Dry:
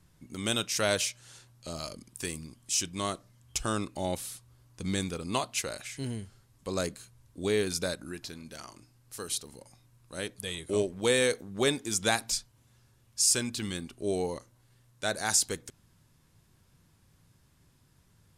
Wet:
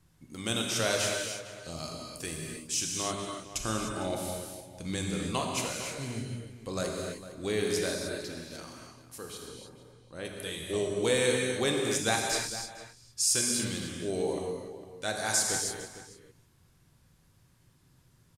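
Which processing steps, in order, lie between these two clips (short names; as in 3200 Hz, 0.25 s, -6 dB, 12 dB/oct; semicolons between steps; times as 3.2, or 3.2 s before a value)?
9.18–10.25 LPF 1800 Hz 6 dB/oct; outdoor echo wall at 78 m, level -13 dB; non-linear reverb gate 0.33 s flat, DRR -0.5 dB; gain -3 dB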